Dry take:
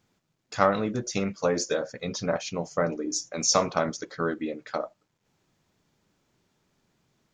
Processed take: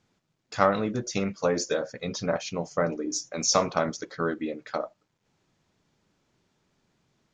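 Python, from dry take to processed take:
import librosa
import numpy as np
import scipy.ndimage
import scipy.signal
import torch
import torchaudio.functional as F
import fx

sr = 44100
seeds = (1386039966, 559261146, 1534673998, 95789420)

y = scipy.signal.sosfilt(scipy.signal.butter(2, 8000.0, 'lowpass', fs=sr, output='sos'), x)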